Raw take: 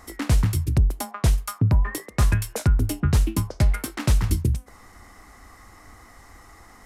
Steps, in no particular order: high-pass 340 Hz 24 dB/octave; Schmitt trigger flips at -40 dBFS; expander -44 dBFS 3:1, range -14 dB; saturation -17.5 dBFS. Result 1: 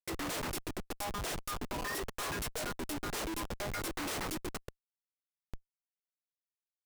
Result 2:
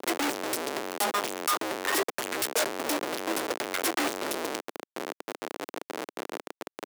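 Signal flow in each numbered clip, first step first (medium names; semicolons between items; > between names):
expander > high-pass > saturation > Schmitt trigger; Schmitt trigger > expander > high-pass > saturation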